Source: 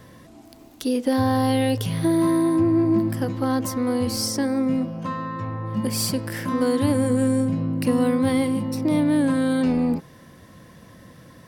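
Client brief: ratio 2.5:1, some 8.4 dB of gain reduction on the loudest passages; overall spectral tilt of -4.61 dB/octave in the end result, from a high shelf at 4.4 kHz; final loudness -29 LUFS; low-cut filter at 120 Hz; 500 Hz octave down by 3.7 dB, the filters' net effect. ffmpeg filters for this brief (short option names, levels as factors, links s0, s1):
-af "highpass=120,equalizer=f=500:t=o:g=-4.5,highshelf=f=4400:g=7,acompressor=threshold=0.0282:ratio=2.5,volume=1.26"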